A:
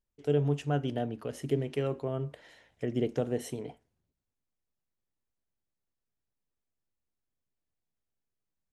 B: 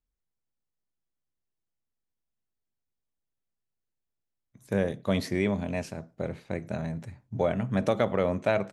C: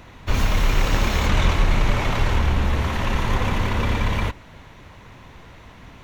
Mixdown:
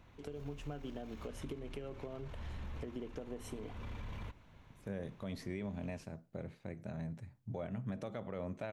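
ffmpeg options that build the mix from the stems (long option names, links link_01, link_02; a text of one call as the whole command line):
ffmpeg -i stem1.wav -i stem2.wav -i stem3.wav -filter_complex "[0:a]equalizer=frequency=120:width_type=o:width=0.48:gain=-14,acompressor=threshold=-30dB:ratio=6,volume=2dB[link_01];[1:a]adelay=150,volume=-11dB[link_02];[2:a]alimiter=limit=-17.5dB:level=0:latency=1:release=22,volume=-19dB[link_03];[link_01][link_03]amix=inputs=2:normalize=0,bandreject=frequency=1900:width=18,acompressor=threshold=-44dB:ratio=4,volume=0dB[link_04];[link_02][link_04]amix=inputs=2:normalize=0,bass=frequency=250:gain=4,treble=frequency=4000:gain=-2,alimiter=level_in=7dB:limit=-24dB:level=0:latency=1:release=142,volume=-7dB" out.wav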